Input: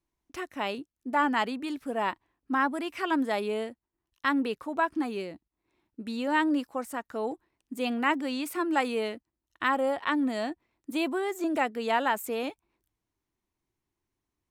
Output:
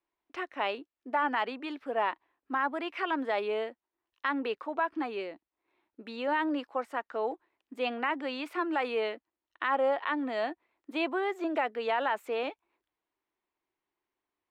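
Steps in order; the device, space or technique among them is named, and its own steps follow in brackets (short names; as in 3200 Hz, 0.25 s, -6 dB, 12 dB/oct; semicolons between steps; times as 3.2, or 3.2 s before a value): DJ mixer with the lows and highs turned down (three-band isolator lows -20 dB, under 340 Hz, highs -24 dB, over 3900 Hz; limiter -21 dBFS, peak gain reduction 7.5 dB); gain +2 dB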